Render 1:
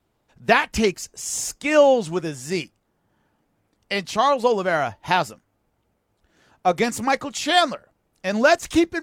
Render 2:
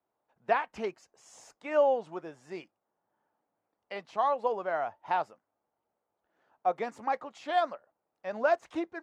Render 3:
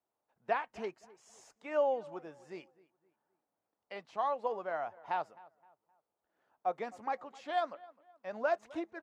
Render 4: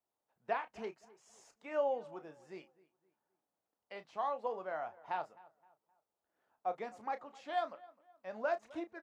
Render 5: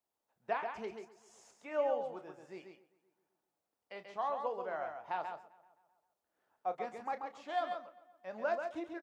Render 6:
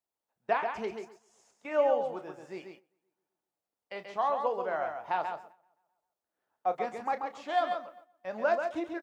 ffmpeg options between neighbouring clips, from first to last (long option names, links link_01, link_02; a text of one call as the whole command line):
ffmpeg -i in.wav -af "bandpass=frequency=800:width_type=q:width=1.2:csg=0,volume=-7.5dB" out.wav
ffmpeg -i in.wav -filter_complex "[0:a]asplit=2[link_01][link_02];[link_02]adelay=260,lowpass=frequency=2400:poles=1,volume=-21dB,asplit=2[link_03][link_04];[link_04]adelay=260,lowpass=frequency=2400:poles=1,volume=0.38,asplit=2[link_05][link_06];[link_06]adelay=260,lowpass=frequency=2400:poles=1,volume=0.38[link_07];[link_01][link_03][link_05][link_07]amix=inputs=4:normalize=0,volume=-5.5dB" out.wav
ffmpeg -i in.wav -filter_complex "[0:a]asplit=2[link_01][link_02];[link_02]adelay=32,volume=-11dB[link_03];[link_01][link_03]amix=inputs=2:normalize=0,volume=-3.5dB" out.wav
ffmpeg -i in.wav -af "aecho=1:1:136:0.501" out.wav
ffmpeg -i in.wav -af "agate=range=-11dB:threshold=-59dB:ratio=16:detection=peak,volume=7dB" out.wav